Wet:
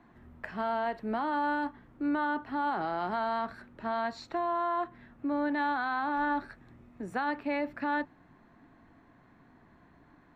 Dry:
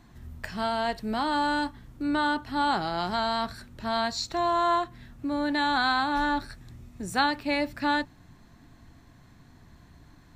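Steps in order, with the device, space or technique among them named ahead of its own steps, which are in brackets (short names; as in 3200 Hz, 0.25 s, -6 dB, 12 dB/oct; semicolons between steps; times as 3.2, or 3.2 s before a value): DJ mixer with the lows and highs turned down (three-band isolator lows -14 dB, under 200 Hz, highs -21 dB, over 2400 Hz; limiter -23 dBFS, peak gain reduction 9 dB)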